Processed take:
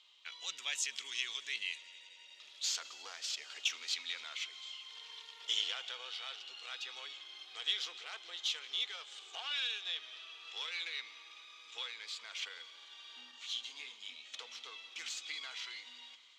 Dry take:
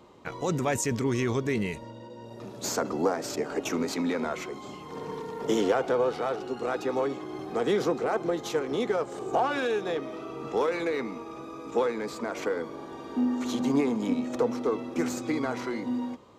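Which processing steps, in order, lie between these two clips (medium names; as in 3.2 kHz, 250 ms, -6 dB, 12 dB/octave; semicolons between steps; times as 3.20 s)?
ladder band-pass 3.6 kHz, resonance 60%; multi-head delay 88 ms, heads second and third, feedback 72%, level -22.5 dB; 13.31–14.34 s: detune thickener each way 26 cents; trim +11 dB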